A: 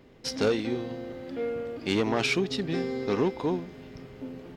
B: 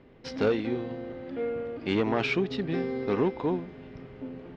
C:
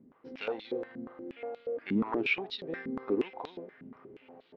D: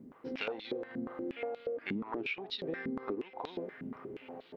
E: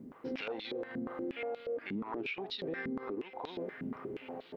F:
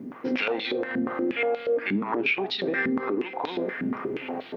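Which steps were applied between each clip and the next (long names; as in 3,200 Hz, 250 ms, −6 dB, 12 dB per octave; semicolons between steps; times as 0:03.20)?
low-pass filter 2,900 Hz 12 dB per octave
band-pass on a step sequencer 8.4 Hz 220–3,900 Hz; level +4.5 dB
downward compressor 16 to 1, threshold −40 dBFS, peak gain reduction 17 dB; level +6.5 dB
brickwall limiter −33 dBFS, peak gain reduction 10.5 dB; level +3 dB
convolution reverb RT60 0.45 s, pre-delay 3 ms, DRR 16 dB; level +8.5 dB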